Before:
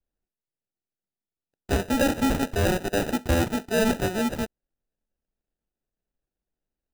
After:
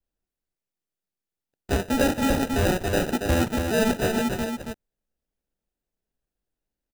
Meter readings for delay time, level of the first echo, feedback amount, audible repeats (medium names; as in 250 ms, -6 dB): 278 ms, -5.5 dB, no regular repeats, 1